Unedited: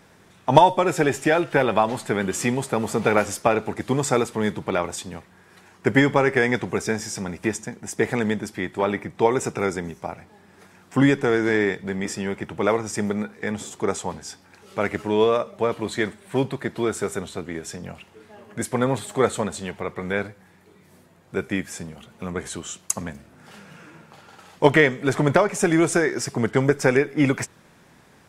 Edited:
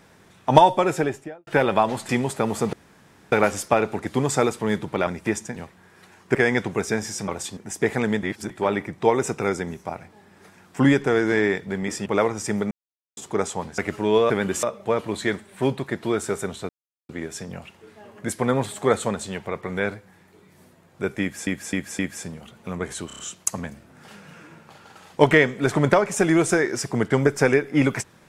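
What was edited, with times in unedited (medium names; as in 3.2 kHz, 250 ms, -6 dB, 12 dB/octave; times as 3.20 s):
0.81–1.47 s: studio fade out
2.09–2.42 s: move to 15.36 s
3.06 s: insert room tone 0.59 s
4.81–5.10 s: swap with 7.25–7.74 s
5.89–6.32 s: delete
8.40–8.67 s: reverse
12.23–12.55 s: delete
13.20–13.66 s: mute
14.27–14.84 s: delete
17.42 s: insert silence 0.40 s
21.54–21.80 s: loop, 4 plays
22.62 s: stutter 0.03 s, 5 plays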